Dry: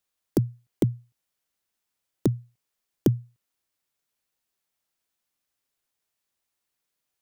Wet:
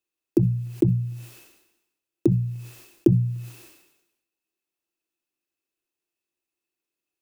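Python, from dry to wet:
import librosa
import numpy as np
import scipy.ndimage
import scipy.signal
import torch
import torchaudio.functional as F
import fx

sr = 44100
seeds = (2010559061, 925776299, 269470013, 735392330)

y = fx.hum_notches(x, sr, base_hz=60, count=3)
y = fx.small_body(y, sr, hz=(340.0, 2600.0), ring_ms=45, db=17)
y = fx.sustainer(y, sr, db_per_s=62.0)
y = F.gain(torch.from_numpy(y), -7.5).numpy()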